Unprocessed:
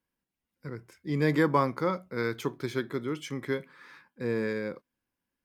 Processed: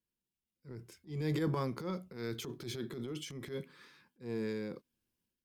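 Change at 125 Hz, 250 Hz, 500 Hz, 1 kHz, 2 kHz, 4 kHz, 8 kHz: -5.0 dB, -8.0 dB, -10.0 dB, -14.0 dB, -14.0 dB, -3.0 dB, -1.0 dB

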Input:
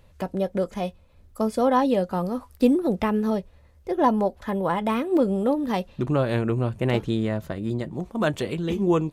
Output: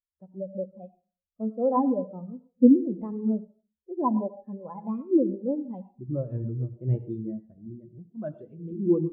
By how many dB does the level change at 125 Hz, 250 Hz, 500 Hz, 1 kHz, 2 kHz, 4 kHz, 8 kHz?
-4.5 dB, -1.5 dB, -6.0 dB, -8.0 dB, under -30 dB, under -40 dB, no reading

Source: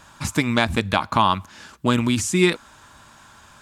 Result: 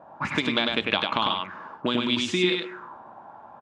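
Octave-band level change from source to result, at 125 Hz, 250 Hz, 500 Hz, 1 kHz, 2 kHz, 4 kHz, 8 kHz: -12.0 dB, -6.0 dB, -4.0 dB, -6.5 dB, -2.5 dB, +2.5 dB, -14.0 dB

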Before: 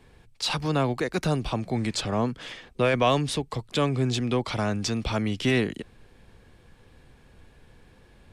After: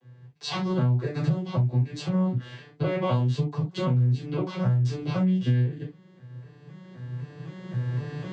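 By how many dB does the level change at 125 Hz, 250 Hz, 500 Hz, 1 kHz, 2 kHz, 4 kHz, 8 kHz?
+6.0 dB, 0.0 dB, -5.0 dB, -6.5 dB, -8.5 dB, -8.5 dB, under -10 dB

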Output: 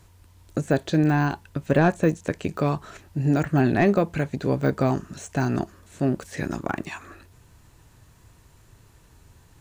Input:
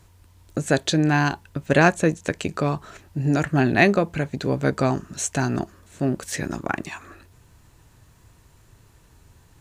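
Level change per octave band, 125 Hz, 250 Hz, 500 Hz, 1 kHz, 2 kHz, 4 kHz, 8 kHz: 0.0 dB, -0.5 dB, -1.0 dB, -2.5 dB, -6.5 dB, -9.5 dB, -11.5 dB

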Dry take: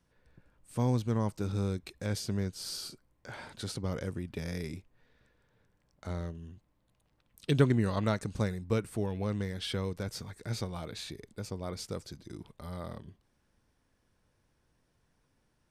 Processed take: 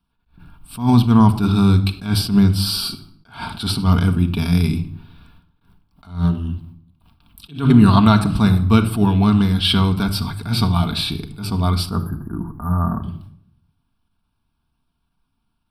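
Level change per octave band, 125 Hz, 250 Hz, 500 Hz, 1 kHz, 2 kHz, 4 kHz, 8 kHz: +17.0 dB, +19.0 dB, +7.5 dB, +19.0 dB, +13.0 dB, +19.0 dB, +11.5 dB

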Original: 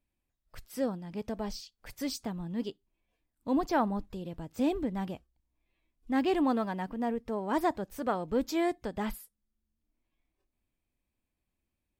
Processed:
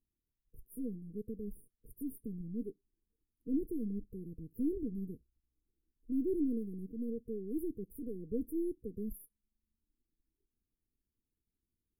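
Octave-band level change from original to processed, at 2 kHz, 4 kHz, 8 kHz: under -40 dB, under -35 dB, under -10 dB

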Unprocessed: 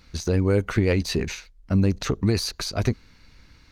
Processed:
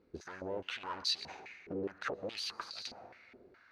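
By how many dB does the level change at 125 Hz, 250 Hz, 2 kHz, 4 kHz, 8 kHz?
-32.5 dB, -22.5 dB, -11.0 dB, -6.0 dB, -15.5 dB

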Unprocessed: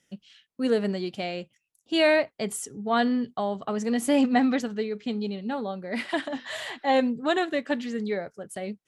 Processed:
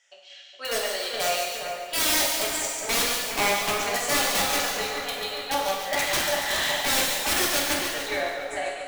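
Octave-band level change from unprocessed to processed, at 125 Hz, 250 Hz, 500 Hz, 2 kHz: no reading, -12.0 dB, -2.5 dB, +5.5 dB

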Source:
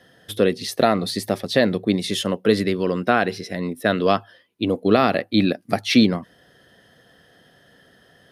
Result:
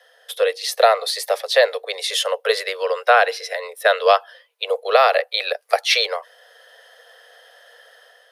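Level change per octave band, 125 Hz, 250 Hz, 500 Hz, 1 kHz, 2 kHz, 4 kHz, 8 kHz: under -40 dB, under -35 dB, +3.0 dB, +5.0 dB, +5.0 dB, +5.0 dB, +5.0 dB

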